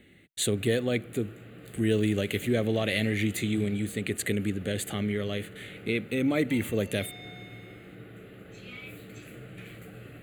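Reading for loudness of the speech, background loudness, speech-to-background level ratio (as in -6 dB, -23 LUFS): -29.0 LUFS, -46.0 LUFS, 17.0 dB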